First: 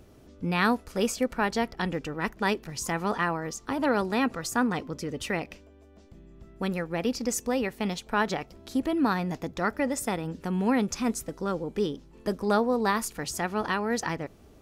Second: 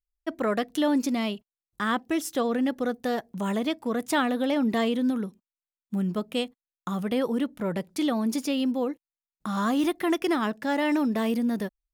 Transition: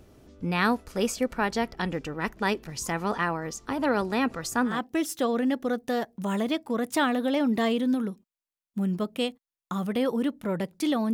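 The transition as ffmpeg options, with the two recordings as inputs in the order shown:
-filter_complex "[0:a]apad=whole_dur=11.13,atrim=end=11.13,atrim=end=4.85,asetpts=PTS-STARTPTS[a];[1:a]atrim=start=1.79:end=8.29,asetpts=PTS-STARTPTS[b];[a][b]acrossfade=d=0.22:c1=tri:c2=tri"

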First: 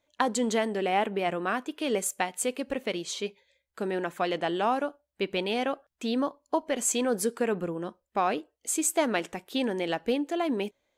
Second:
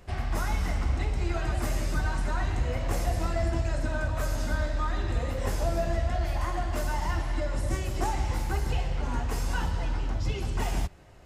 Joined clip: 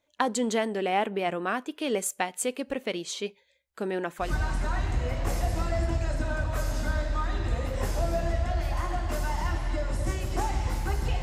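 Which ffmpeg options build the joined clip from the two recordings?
-filter_complex "[0:a]apad=whole_dur=11.22,atrim=end=11.22,atrim=end=4.34,asetpts=PTS-STARTPTS[a];[1:a]atrim=start=1.82:end=8.86,asetpts=PTS-STARTPTS[b];[a][b]acrossfade=d=0.16:c1=tri:c2=tri"

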